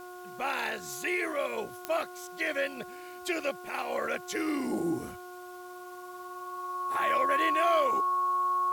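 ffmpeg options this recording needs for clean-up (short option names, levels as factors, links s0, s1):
-af "adeclick=t=4,bandreject=f=360.6:t=h:w=4,bandreject=f=721.2:t=h:w=4,bandreject=f=1081.8:t=h:w=4,bandreject=f=1442.4:t=h:w=4,bandreject=f=1100:w=30,agate=range=0.0891:threshold=0.0141"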